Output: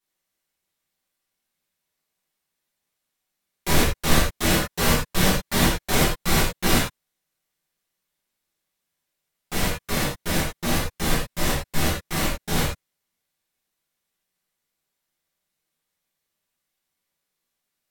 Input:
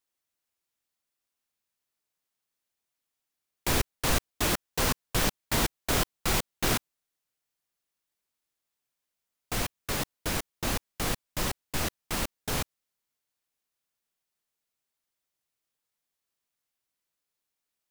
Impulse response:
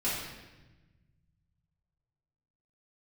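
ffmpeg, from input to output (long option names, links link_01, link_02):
-filter_complex "[1:a]atrim=start_sample=2205,afade=type=out:start_time=0.14:duration=0.01,atrim=end_sample=6615,asetrate=34839,aresample=44100[link_01];[0:a][link_01]afir=irnorm=-1:irlink=0,volume=-1dB"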